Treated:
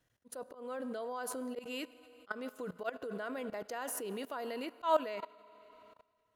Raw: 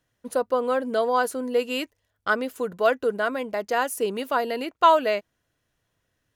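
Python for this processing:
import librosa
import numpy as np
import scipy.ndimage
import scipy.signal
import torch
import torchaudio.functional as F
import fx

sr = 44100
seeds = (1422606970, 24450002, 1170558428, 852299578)

y = fx.rev_schroeder(x, sr, rt60_s=2.5, comb_ms=29, drr_db=17.0)
y = fx.level_steps(y, sr, step_db=19)
y = fx.auto_swell(y, sr, attack_ms=189.0)
y = y * 10.0 ** (-1.5 / 20.0)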